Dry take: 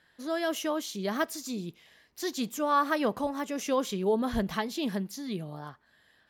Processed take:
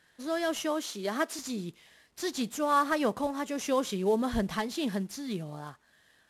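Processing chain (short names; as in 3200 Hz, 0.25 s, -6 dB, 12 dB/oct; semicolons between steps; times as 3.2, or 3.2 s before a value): CVSD 64 kbps; 0.64–1.39 HPF 220 Hz 24 dB/oct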